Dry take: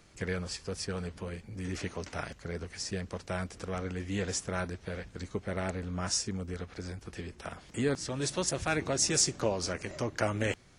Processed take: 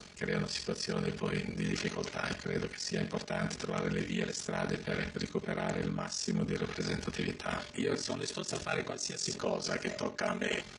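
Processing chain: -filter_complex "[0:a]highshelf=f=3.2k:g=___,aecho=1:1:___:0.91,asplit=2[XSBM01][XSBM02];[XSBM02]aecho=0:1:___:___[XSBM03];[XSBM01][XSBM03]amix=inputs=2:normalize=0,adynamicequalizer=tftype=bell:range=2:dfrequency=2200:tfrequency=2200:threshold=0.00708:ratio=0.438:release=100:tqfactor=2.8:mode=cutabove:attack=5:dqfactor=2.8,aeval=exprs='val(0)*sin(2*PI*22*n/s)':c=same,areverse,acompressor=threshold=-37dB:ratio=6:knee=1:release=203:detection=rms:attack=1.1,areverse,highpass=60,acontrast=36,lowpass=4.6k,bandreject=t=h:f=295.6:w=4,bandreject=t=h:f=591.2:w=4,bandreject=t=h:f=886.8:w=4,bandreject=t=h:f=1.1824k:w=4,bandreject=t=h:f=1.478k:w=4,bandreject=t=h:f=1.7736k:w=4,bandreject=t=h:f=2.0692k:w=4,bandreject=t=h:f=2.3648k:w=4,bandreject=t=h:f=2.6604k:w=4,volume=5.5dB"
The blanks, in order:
10.5, 4.8, 75, 0.2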